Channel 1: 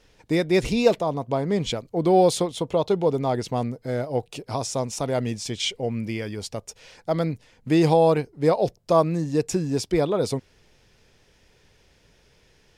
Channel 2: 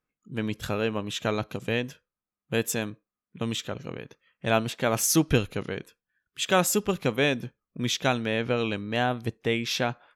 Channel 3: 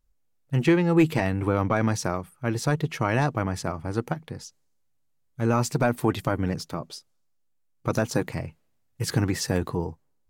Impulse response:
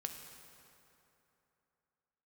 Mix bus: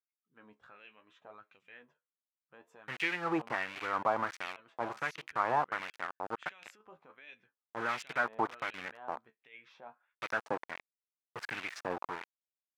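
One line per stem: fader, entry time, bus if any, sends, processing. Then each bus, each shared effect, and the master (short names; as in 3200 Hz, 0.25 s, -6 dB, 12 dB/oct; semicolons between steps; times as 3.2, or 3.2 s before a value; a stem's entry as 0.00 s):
off
-9.0 dB, 0.00 s, bus A, no send, high shelf 2200 Hz -7.5 dB; flange 0.68 Hz, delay 9.4 ms, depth 6.2 ms, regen +41%
+1.0 dB, 2.35 s, no bus, no send, sample gate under -26 dBFS
bus A: 0.0 dB, negative-ratio compressor -40 dBFS, ratio -1; limiter -32 dBFS, peak gain reduction 5.5 dB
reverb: off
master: LFO band-pass sine 1.4 Hz 860–2500 Hz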